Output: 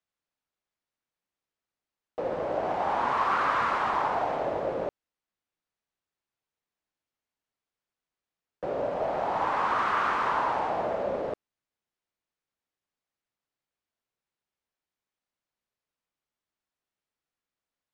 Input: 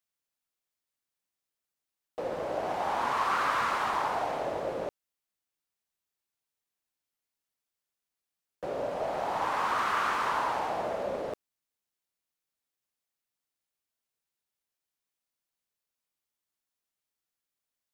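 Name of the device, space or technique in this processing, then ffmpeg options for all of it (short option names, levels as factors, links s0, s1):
through cloth: -af "lowpass=8500,highshelf=f=3700:g=-12,volume=1.5"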